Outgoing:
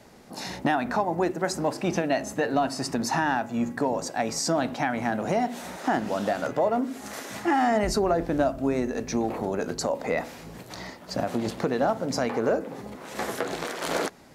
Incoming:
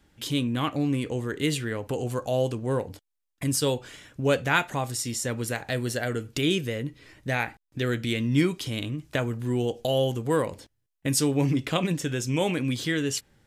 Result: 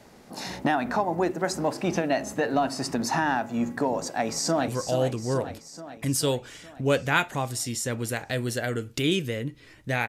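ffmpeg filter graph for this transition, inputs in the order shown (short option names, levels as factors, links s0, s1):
-filter_complex "[0:a]apad=whole_dur=10.08,atrim=end=10.08,atrim=end=4.682[s0];[1:a]atrim=start=2.068:end=7.47[s1];[s0][s1]acrossfade=d=0.004:c1=hsin:c2=hsin,asplit=2[s2][s3];[s3]afade=t=in:st=4:d=0.01,afade=t=out:st=4.68:d=0.01,aecho=0:1:430|860|1290|1720|2150|2580|3010|3440|3870:0.354813|0.230629|0.149909|0.0974406|0.0633364|0.0411687|0.0267596|0.0173938|0.0113059[s4];[s2][s4]amix=inputs=2:normalize=0"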